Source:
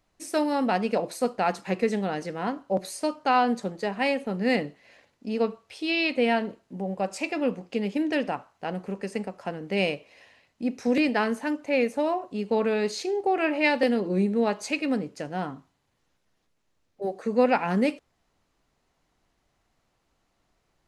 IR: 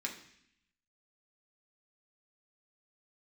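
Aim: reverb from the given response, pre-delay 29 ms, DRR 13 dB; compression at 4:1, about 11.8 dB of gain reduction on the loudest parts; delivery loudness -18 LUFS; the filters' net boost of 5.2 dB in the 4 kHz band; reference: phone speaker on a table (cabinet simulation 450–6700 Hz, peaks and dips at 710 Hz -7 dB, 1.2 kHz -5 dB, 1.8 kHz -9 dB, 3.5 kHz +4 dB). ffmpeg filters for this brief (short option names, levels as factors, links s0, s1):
-filter_complex "[0:a]equalizer=f=4000:t=o:g=5.5,acompressor=threshold=0.0282:ratio=4,asplit=2[s0][s1];[1:a]atrim=start_sample=2205,adelay=29[s2];[s1][s2]afir=irnorm=-1:irlink=0,volume=0.188[s3];[s0][s3]amix=inputs=2:normalize=0,highpass=f=450:w=0.5412,highpass=f=450:w=1.3066,equalizer=f=710:t=q:w=4:g=-7,equalizer=f=1200:t=q:w=4:g=-5,equalizer=f=1800:t=q:w=4:g=-9,equalizer=f=3500:t=q:w=4:g=4,lowpass=f=6700:w=0.5412,lowpass=f=6700:w=1.3066,volume=11.2"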